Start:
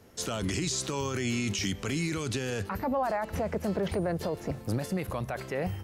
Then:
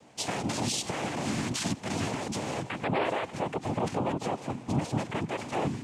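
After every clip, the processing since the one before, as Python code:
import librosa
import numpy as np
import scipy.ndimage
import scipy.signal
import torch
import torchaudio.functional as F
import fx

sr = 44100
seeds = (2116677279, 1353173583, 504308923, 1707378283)

y = fx.noise_vocoder(x, sr, seeds[0], bands=4)
y = fx.rider(y, sr, range_db=10, speed_s=2.0)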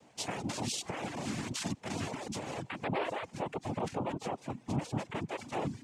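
y = fx.dereverb_blind(x, sr, rt60_s=0.66)
y = y * librosa.db_to_amplitude(-4.5)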